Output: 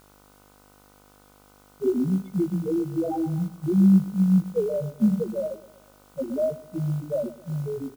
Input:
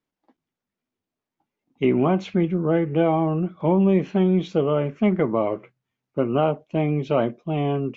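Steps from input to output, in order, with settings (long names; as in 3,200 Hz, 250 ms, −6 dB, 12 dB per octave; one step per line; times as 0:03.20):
high-shelf EQ 2,200 Hz −6 dB
hum removal 99.51 Hz, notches 4
spectral peaks only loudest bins 1
in parallel at −6 dB: bit-depth reduction 8 bits, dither triangular
on the sum: hum with harmonics 50 Hz, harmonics 30, −50 dBFS −2 dB per octave
on a send: repeating echo 124 ms, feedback 49%, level −13.5 dB
on the sum: expander for the loud parts 1.5 to 1, over −39 dBFS
level +4 dB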